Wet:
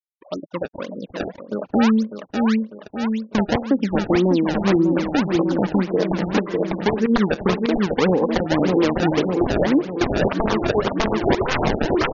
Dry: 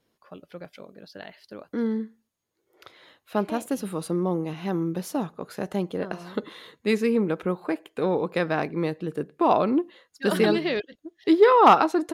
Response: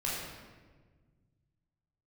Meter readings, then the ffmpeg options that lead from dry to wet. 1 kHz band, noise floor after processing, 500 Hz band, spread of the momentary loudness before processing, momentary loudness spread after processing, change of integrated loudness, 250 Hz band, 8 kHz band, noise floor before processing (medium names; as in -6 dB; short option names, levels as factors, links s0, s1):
-1.5 dB, -50 dBFS, +4.0 dB, 23 LU, 12 LU, +4.0 dB, +8.0 dB, no reading, -77 dBFS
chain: -filter_complex "[0:a]adynamicsmooth=sensitivity=2.5:basefreq=3100,acrossover=split=400[s0][s1];[s0]aeval=exprs='val(0)*(1-0.7/2+0.7/2*cos(2*PI*2.1*n/s))':c=same[s2];[s1]aeval=exprs='val(0)*(1-0.7/2-0.7/2*cos(2*PI*2.1*n/s))':c=same[s3];[s2][s3]amix=inputs=2:normalize=0,aeval=exprs='(mod(7.5*val(0)+1,2)-1)/7.5':c=same,highshelf=f=5300:t=q:w=1.5:g=9,flanger=delay=3.1:depth=2.1:regen=39:speed=0.22:shape=sinusoidal,afftfilt=real='re*gte(hypot(re,im),0.00355)':imag='im*gte(hypot(re,im),0.00355)':win_size=1024:overlap=0.75,acrusher=samples=24:mix=1:aa=0.000001:lfo=1:lforange=38.4:lforate=1.8,equalizer=f=11000:w=2.4:g=-3,asplit=2[s4][s5];[s5]aecho=0:1:599|1198|1797|2396|2995|3594:0.398|0.215|0.116|0.0627|0.0339|0.0183[s6];[s4][s6]amix=inputs=2:normalize=0,acompressor=threshold=0.0178:ratio=6,alimiter=level_in=26.6:limit=0.891:release=50:level=0:latency=1,afftfilt=real='re*lt(b*sr/1024,870*pow(7100/870,0.5+0.5*sin(2*PI*6*pts/sr)))':imag='im*lt(b*sr/1024,870*pow(7100/870,0.5+0.5*sin(2*PI*6*pts/sr)))':win_size=1024:overlap=0.75,volume=0.447"